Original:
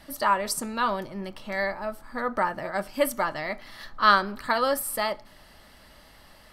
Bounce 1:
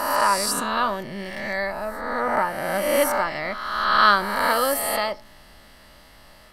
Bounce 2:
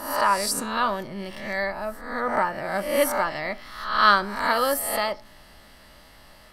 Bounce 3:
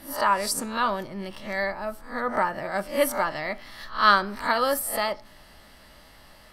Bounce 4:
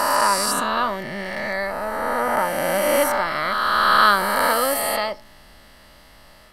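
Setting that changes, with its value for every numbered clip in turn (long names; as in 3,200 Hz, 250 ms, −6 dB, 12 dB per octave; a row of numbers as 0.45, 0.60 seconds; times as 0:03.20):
peak hold with a rise ahead of every peak, rising 60 dB in: 1.48, 0.69, 0.32, 3.14 seconds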